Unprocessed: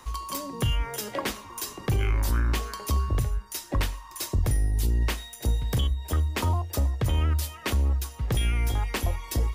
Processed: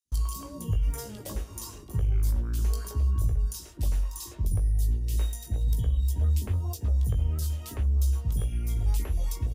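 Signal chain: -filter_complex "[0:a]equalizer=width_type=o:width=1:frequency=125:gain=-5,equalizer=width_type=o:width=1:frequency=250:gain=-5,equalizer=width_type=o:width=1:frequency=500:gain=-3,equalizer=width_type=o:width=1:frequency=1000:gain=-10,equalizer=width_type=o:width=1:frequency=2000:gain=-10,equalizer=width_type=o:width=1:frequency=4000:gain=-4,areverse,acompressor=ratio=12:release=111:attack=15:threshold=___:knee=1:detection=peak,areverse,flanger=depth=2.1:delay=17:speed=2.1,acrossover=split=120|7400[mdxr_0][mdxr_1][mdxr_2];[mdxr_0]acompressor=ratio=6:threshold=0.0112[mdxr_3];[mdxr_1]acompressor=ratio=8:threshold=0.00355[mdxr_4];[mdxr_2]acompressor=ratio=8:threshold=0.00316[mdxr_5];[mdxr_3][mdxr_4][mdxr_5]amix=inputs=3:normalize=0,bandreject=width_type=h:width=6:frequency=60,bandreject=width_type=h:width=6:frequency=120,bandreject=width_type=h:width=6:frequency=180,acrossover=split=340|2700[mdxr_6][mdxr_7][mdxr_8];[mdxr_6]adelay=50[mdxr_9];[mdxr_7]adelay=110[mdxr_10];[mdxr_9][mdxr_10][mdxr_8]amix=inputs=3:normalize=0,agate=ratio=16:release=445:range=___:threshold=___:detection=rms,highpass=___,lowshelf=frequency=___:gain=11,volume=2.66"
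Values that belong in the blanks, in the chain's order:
0.0224, 0.0158, 0.00355, 45, 300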